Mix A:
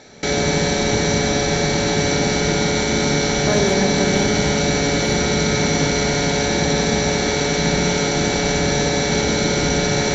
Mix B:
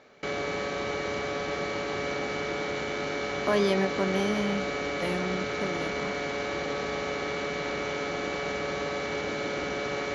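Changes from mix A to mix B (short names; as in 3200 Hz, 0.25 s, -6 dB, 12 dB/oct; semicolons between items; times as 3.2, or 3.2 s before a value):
background: add band-pass 570 Hz, Q 0.53; reverb: off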